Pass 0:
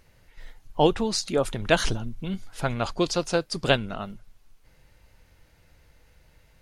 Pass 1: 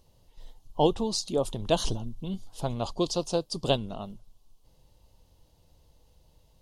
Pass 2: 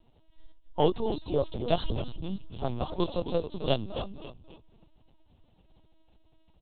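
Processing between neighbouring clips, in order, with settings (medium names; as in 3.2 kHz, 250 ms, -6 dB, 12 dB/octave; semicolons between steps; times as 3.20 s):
high-order bell 1.8 kHz -16 dB 1.1 oct; trim -3 dB
in parallel at -11.5 dB: hard clipper -19 dBFS, distortion -14 dB; on the sum: frequency-shifting echo 269 ms, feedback 31%, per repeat -74 Hz, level -10 dB; LPC vocoder at 8 kHz pitch kept; trim -2.5 dB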